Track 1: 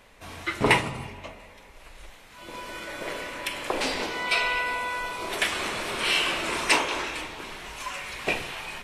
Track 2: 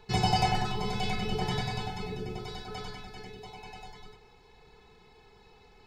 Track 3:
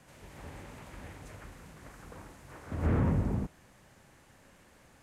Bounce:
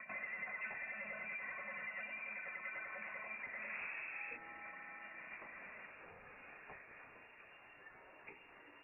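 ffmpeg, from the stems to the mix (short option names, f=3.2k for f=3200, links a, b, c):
-filter_complex "[0:a]acompressor=threshold=-38dB:ratio=2.5,volume=-18dB[a];[1:a]asplit=2[b][c];[c]highpass=f=720:p=1,volume=27dB,asoftclip=type=tanh:threshold=-12dB[d];[b][d]amix=inputs=2:normalize=0,lowpass=f=1.5k:p=1,volume=-6dB,aphaser=in_gain=1:out_gain=1:delay=5:decay=0.46:speed=1.5:type=sinusoidal,volume=-12dB[e];[2:a]adelay=900,volume=1dB[f];[e][f]amix=inputs=2:normalize=0,highpass=390,acompressor=threshold=-44dB:ratio=5,volume=0dB[g];[a][g]amix=inputs=2:normalize=0,lowpass=f=2.4k:t=q:w=0.5098,lowpass=f=2.4k:t=q:w=0.6013,lowpass=f=2.4k:t=q:w=0.9,lowpass=f=2.4k:t=q:w=2.563,afreqshift=-2800"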